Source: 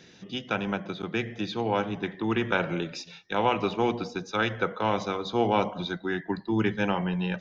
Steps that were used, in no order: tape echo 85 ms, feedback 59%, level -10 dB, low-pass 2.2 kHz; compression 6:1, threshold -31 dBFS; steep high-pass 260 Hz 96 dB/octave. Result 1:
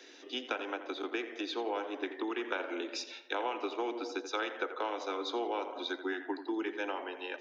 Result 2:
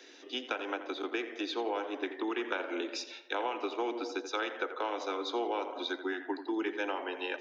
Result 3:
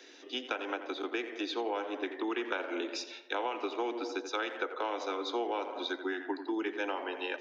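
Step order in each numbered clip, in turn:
compression > tape echo > steep high-pass; steep high-pass > compression > tape echo; tape echo > steep high-pass > compression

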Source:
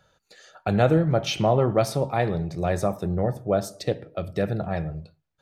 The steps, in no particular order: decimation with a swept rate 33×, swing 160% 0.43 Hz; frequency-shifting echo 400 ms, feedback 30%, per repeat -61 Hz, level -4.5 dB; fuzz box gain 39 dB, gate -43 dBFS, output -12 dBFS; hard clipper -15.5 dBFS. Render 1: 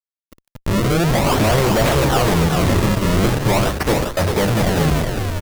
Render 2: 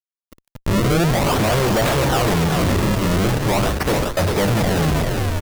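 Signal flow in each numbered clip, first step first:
decimation with a swept rate > fuzz box > hard clipper > frequency-shifting echo; decimation with a swept rate > fuzz box > frequency-shifting echo > hard clipper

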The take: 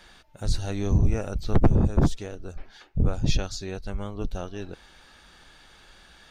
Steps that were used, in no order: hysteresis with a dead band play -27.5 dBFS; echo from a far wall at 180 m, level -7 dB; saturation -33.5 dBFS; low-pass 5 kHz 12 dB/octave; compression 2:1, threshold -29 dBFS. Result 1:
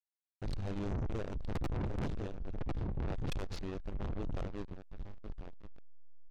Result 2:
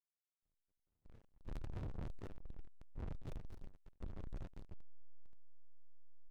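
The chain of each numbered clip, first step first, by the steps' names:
echo from a far wall > hysteresis with a dead band > low-pass > saturation > compression; low-pass > saturation > echo from a far wall > compression > hysteresis with a dead band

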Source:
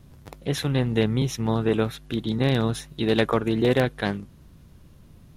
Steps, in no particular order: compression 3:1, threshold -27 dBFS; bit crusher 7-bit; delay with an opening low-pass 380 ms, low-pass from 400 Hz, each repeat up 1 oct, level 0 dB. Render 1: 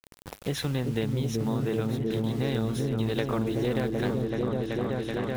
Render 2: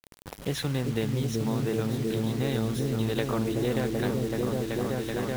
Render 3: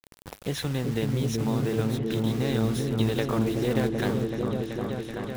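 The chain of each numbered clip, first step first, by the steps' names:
bit crusher > delay with an opening low-pass > compression; delay with an opening low-pass > compression > bit crusher; compression > bit crusher > delay with an opening low-pass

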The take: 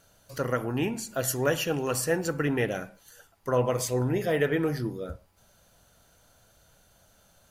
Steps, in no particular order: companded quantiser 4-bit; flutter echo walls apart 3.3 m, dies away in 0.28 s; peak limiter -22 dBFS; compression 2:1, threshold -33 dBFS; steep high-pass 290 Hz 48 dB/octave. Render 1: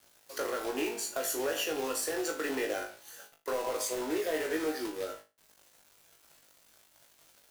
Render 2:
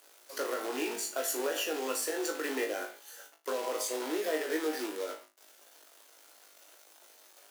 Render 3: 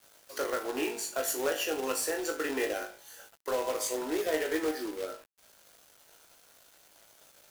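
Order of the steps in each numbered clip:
steep high-pass > peak limiter > companded quantiser > compression > flutter echo; companded quantiser > peak limiter > steep high-pass > compression > flutter echo; steep high-pass > compression > peak limiter > flutter echo > companded quantiser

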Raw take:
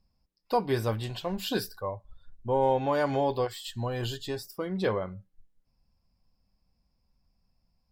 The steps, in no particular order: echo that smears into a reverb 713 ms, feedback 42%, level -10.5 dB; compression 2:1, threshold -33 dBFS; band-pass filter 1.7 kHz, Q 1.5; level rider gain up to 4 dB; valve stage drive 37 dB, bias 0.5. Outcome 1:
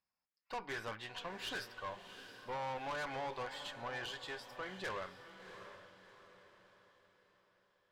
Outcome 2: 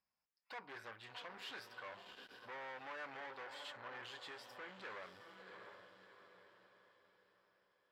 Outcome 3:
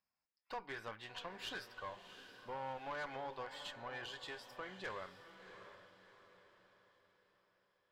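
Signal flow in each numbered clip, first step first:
band-pass filter > compression > level rider > valve stage > echo that smears into a reverb; level rider > compression > echo that smears into a reverb > valve stage > band-pass filter; level rider > compression > band-pass filter > valve stage > echo that smears into a reverb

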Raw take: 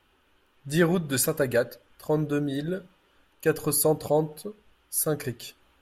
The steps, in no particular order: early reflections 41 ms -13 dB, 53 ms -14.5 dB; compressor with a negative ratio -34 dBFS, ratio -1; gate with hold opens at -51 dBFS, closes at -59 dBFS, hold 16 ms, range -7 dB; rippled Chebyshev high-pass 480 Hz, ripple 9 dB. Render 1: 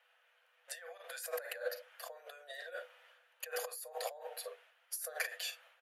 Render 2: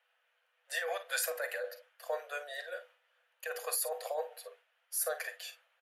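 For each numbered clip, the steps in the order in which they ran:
early reflections > compressor with a negative ratio > rippled Chebyshev high-pass > gate with hold; rippled Chebyshev high-pass > compressor with a negative ratio > early reflections > gate with hold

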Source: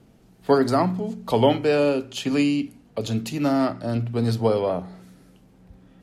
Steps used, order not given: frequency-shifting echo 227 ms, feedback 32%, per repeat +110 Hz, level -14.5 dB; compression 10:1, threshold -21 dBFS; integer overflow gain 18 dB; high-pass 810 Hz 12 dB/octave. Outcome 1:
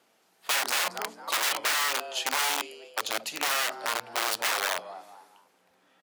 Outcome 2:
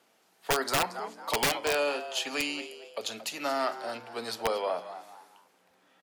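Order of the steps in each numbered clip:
frequency-shifting echo > integer overflow > high-pass > compression; frequency-shifting echo > high-pass > integer overflow > compression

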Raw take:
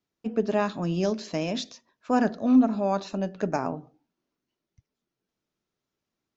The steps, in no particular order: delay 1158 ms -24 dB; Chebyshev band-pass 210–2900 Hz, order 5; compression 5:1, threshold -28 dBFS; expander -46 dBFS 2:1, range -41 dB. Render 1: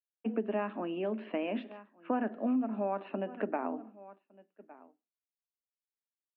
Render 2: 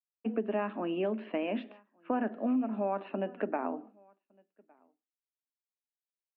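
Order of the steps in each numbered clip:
delay > compression > expander > Chebyshev band-pass; Chebyshev band-pass > compression > delay > expander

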